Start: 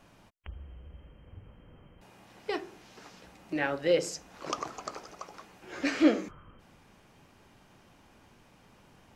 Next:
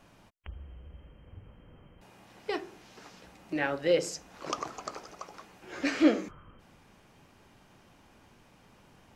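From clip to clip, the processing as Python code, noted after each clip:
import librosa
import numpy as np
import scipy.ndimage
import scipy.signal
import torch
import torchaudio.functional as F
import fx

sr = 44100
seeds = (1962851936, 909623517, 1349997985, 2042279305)

y = x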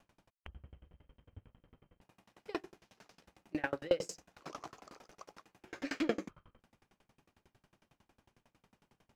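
y = fx.leveller(x, sr, passes=1)
y = fx.tremolo_decay(y, sr, direction='decaying', hz=11.0, depth_db=31)
y = y * 10.0 ** (-2.5 / 20.0)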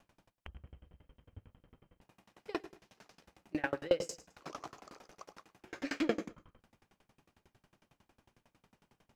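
y = fx.echo_feedback(x, sr, ms=106, feedback_pct=26, wet_db=-18)
y = y * 10.0 ** (1.0 / 20.0)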